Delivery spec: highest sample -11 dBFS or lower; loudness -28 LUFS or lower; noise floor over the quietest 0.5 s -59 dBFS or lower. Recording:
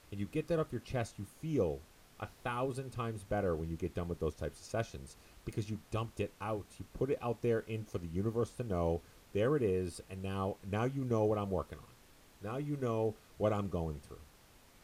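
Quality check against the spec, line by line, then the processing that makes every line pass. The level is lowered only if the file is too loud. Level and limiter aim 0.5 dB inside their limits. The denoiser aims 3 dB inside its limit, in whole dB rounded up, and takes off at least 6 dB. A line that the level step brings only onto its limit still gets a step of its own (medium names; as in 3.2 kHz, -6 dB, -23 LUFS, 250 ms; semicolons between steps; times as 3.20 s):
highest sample -20.0 dBFS: pass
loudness -37.5 LUFS: pass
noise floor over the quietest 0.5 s -62 dBFS: pass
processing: none needed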